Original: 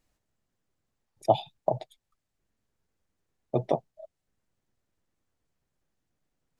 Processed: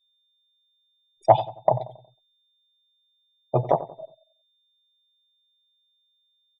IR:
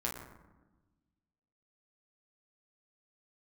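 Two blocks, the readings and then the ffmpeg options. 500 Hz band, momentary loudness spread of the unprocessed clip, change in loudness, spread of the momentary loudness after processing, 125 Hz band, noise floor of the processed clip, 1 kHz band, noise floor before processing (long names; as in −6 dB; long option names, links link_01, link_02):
+5.5 dB, 7 LU, +6.0 dB, 13 LU, +6.5 dB, −70 dBFS, +8.5 dB, −83 dBFS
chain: -filter_complex "[0:a]aeval=exprs='val(0)+0.000891*sin(2*PI*3600*n/s)':channel_layout=same,acontrast=61,afftdn=noise_reduction=32:noise_floor=-40,equalizer=frequency=125:width_type=o:width=1:gain=5,equalizer=frequency=250:width_type=o:width=1:gain=-7,equalizer=frequency=1000:width_type=o:width=1:gain=10,equalizer=frequency=4000:width_type=o:width=1:gain=-6,asplit=2[link_01][link_02];[link_02]adelay=91,lowpass=frequency=1100:poles=1,volume=-14dB,asplit=2[link_03][link_04];[link_04]adelay=91,lowpass=frequency=1100:poles=1,volume=0.44,asplit=2[link_05][link_06];[link_06]adelay=91,lowpass=frequency=1100:poles=1,volume=0.44,asplit=2[link_07][link_08];[link_08]adelay=91,lowpass=frequency=1100:poles=1,volume=0.44[link_09];[link_03][link_05][link_07][link_09]amix=inputs=4:normalize=0[link_10];[link_01][link_10]amix=inputs=2:normalize=0,volume=-3dB"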